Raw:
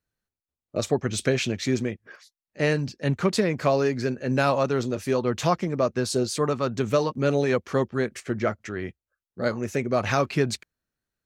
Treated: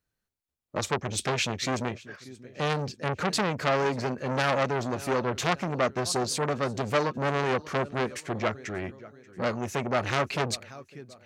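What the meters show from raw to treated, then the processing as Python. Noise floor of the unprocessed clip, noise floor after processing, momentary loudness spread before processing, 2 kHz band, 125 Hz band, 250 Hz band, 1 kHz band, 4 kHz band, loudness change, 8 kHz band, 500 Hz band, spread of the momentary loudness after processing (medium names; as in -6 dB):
under -85 dBFS, -84 dBFS, 6 LU, 0.0 dB, -4.5 dB, -6.0 dB, +0.5 dB, +1.0 dB, -3.0 dB, 0.0 dB, -4.5 dB, 11 LU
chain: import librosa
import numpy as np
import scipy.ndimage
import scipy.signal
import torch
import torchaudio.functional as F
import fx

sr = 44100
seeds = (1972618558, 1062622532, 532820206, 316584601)

p1 = x + fx.echo_feedback(x, sr, ms=585, feedback_pct=43, wet_db=-22.5, dry=0)
p2 = fx.transformer_sat(p1, sr, knee_hz=2300.0)
y = F.gain(torch.from_numpy(p2), 1.0).numpy()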